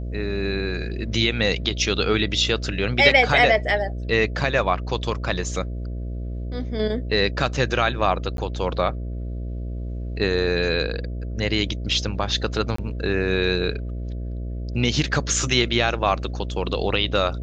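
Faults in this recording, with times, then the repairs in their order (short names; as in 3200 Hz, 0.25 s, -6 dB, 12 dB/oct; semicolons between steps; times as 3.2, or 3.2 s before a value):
buzz 60 Hz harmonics 11 -29 dBFS
8.37–8.38 gap 12 ms
12.76–12.78 gap 24 ms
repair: de-hum 60 Hz, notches 11; interpolate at 8.37, 12 ms; interpolate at 12.76, 24 ms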